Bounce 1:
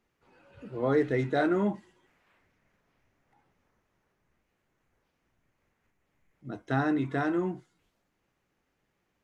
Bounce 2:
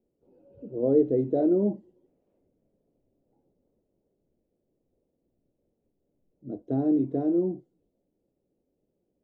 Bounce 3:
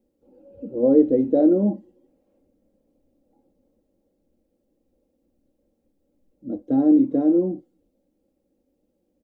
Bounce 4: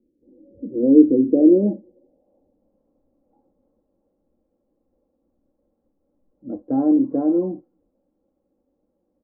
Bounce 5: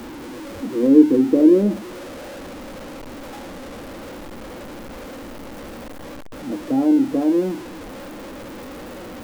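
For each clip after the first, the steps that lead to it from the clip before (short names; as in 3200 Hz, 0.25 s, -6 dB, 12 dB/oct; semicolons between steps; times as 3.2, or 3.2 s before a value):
EQ curve 120 Hz 0 dB, 280 Hz +8 dB, 560 Hz +7 dB, 1100 Hz -20 dB, 1800 Hz -28 dB, 3000 Hz -21 dB; gain -3 dB
comb 3.7 ms, depth 65%; gain +4.5 dB
low-pass sweep 340 Hz -> 1100 Hz, 1.21–2.84; gain -1.5 dB
zero-crossing step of -29 dBFS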